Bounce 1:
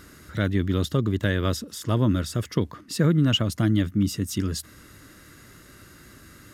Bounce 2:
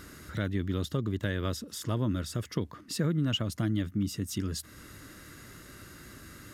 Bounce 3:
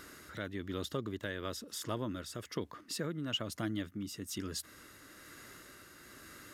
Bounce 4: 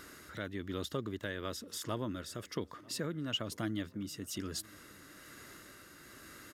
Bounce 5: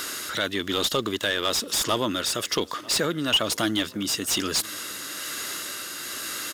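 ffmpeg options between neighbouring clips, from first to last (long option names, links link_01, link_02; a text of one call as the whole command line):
ffmpeg -i in.wav -af "acompressor=threshold=-40dB:ratio=1.5" out.wav
ffmpeg -i in.wav -af "bass=frequency=250:gain=-11,treble=frequency=4000:gain=-1,tremolo=f=1.1:d=0.33,volume=-1dB" out.wav
ffmpeg -i in.wav -filter_complex "[0:a]asplit=2[link_01][link_02];[link_02]adelay=944,lowpass=frequency=2400:poles=1,volume=-23.5dB,asplit=2[link_03][link_04];[link_04]adelay=944,lowpass=frequency=2400:poles=1,volume=0.54,asplit=2[link_05][link_06];[link_06]adelay=944,lowpass=frequency=2400:poles=1,volume=0.54,asplit=2[link_07][link_08];[link_08]adelay=944,lowpass=frequency=2400:poles=1,volume=0.54[link_09];[link_01][link_03][link_05][link_07][link_09]amix=inputs=5:normalize=0" out.wav
ffmpeg -i in.wav -filter_complex "[0:a]aexciter=amount=3.3:drive=5.7:freq=2800,asplit=2[link_01][link_02];[link_02]highpass=frequency=720:poles=1,volume=21dB,asoftclip=type=tanh:threshold=-14dB[link_03];[link_01][link_03]amix=inputs=2:normalize=0,lowpass=frequency=2800:poles=1,volume=-6dB,volume=4.5dB" out.wav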